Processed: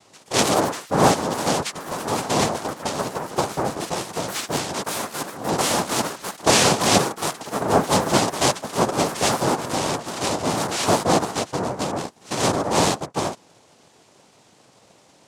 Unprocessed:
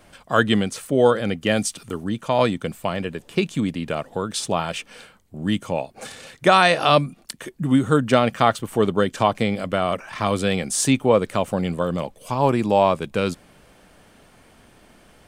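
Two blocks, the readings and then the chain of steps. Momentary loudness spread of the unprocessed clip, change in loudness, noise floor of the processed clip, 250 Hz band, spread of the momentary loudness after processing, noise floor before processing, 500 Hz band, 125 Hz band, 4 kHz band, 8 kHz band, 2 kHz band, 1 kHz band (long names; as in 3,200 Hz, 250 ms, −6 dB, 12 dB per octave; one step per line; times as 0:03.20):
12 LU, −0.5 dB, −55 dBFS, −3.0 dB, 9 LU, −53 dBFS, −2.5 dB, −2.5 dB, +3.5 dB, +7.5 dB, −1.5 dB, +0.5 dB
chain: cochlear-implant simulation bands 2
delay with pitch and tempo change per echo 146 ms, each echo +3 semitones, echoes 3, each echo −6 dB
level −2 dB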